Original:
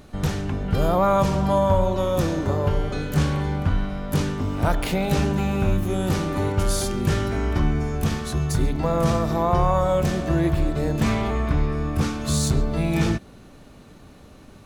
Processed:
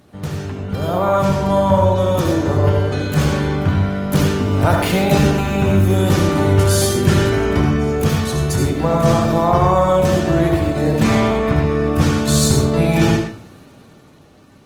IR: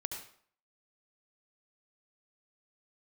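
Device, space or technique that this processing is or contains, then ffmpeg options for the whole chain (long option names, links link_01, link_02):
far-field microphone of a smart speaker: -filter_complex "[1:a]atrim=start_sample=2205[link_01];[0:a][link_01]afir=irnorm=-1:irlink=0,highpass=frequency=81:width=0.5412,highpass=frequency=81:width=1.3066,dynaudnorm=framelen=150:gausssize=17:maxgain=11.5dB" -ar 48000 -c:a libopus -b:a 20k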